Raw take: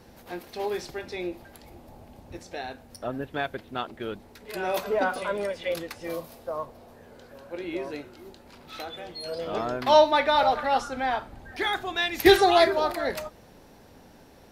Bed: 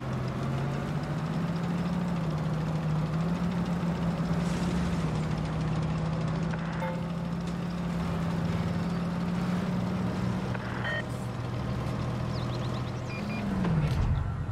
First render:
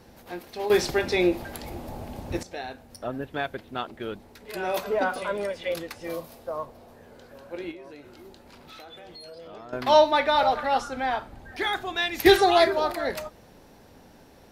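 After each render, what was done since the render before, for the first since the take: 0.70–2.43 s: gain +11 dB; 7.71–9.73 s: compression 4:1, threshold -42 dBFS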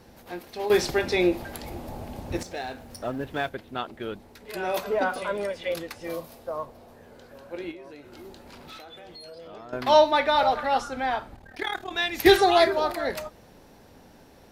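2.39–3.49 s: companding laws mixed up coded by mu; 8.12–8.78 s: waveshaping leveller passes 1; 11.36–11.91 s: AM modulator 38 Hz, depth 70%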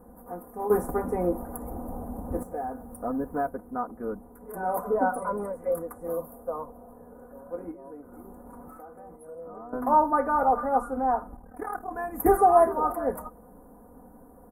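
Chebyshev band-stop 1.2–10 kHz, order 3; comb 4.1 ms, depth 75%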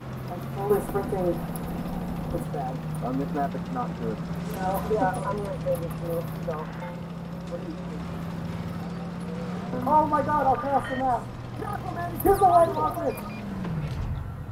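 add bed -3.5 dB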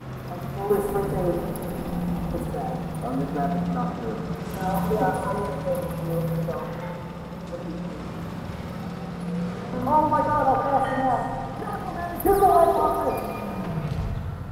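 flutter echo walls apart 11.7 m, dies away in 0.64 s; plate-style reverb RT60 3.2 s, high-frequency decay 0.8×, pre-delay 90 ms, DRR 7.5 dB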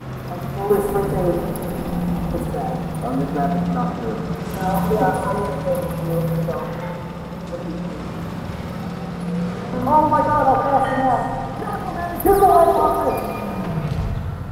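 trim +5 dB; peak limiter -3 dBFS, peak gain reduction 2.5 dB

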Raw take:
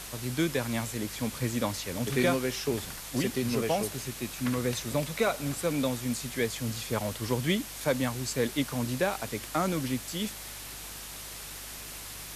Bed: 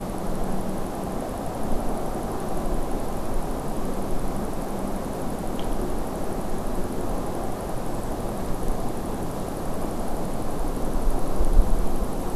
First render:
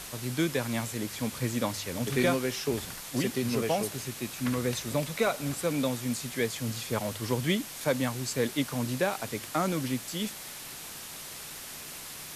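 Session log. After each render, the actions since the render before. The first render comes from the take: de-hum 50 Hz, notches 2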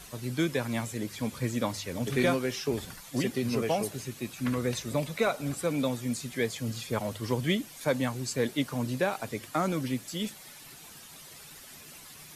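noise reduction 10 dB, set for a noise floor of -43 dBFS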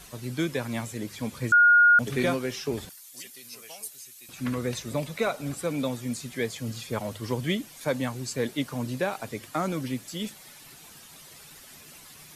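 1.52–1.99 s: bleep 1.43 kHz -13.5 dBFS; 2.89–4.29 s: pre-emphasis filter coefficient 0.97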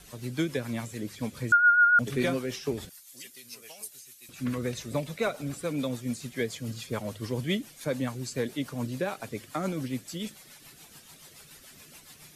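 rotary cabinet horn 7 Hz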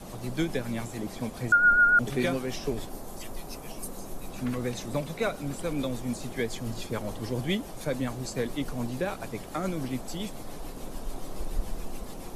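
add bed -13 dB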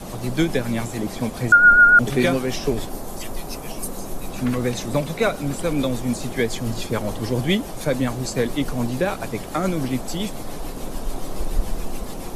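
trim +8.5 dB

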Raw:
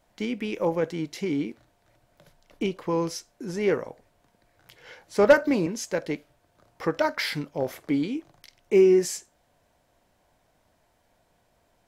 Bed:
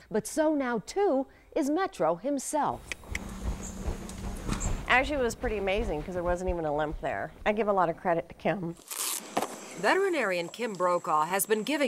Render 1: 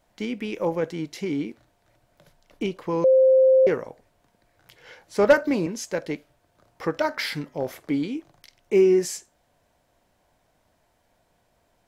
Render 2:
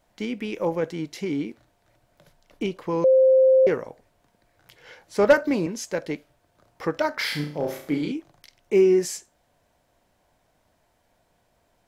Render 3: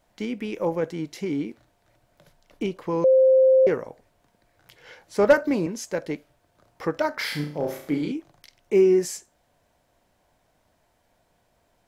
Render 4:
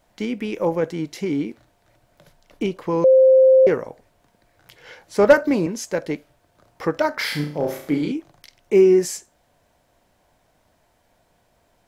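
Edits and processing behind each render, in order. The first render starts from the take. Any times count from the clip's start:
3.04–3.67 s: bleep 524 Hz -12.5 dBFS; 6.92–7.64 s: de-hum 127.1 Hz, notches 16
7.15–8.12 s: flutter echo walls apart 5.8 m, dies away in 0.46 s
dynamic bell 3.4 kHz, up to -3 dB, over -44 dBFS, Q 0.73
trim +4 dB

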